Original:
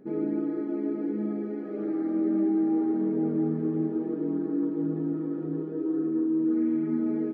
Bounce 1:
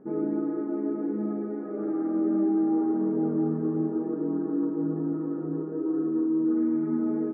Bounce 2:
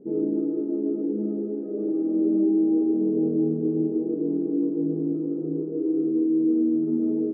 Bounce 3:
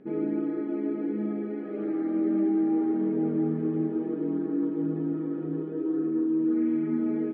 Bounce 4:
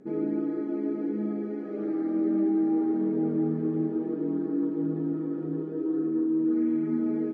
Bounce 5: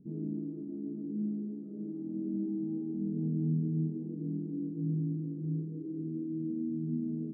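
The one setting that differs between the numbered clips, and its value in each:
synth low-pass, frequency: 1200, 460, 3000, 7800, 150 Hz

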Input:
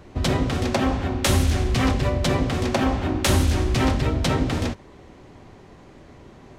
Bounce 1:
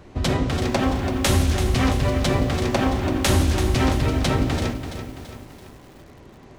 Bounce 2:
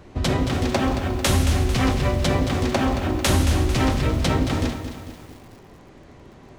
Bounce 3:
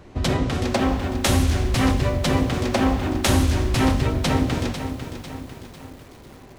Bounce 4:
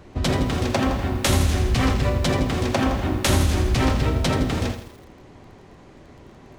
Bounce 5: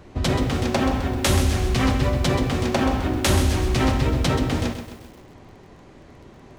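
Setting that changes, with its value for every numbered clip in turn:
lo-fi delay, time: 335, 223, 498, 82, 130 ms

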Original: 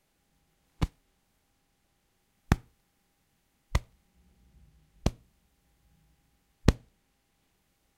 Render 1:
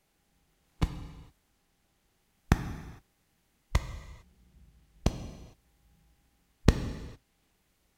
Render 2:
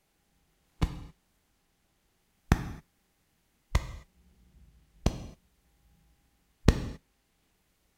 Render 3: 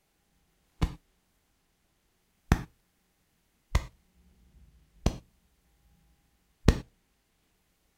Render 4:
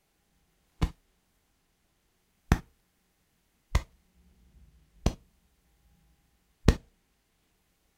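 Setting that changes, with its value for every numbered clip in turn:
non-linear reverb, gate: 480, 290, 140, 90 ms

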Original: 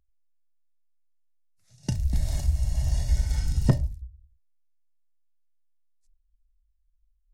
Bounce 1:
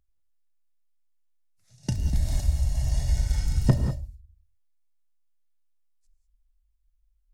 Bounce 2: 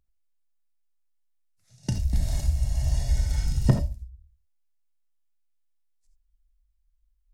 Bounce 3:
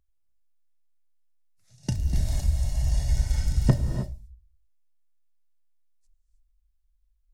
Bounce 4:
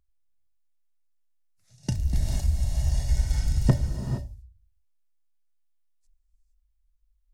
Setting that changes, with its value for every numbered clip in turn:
non-linear reverb, gate: 0.22, 0.1, 0.34, 0.49 s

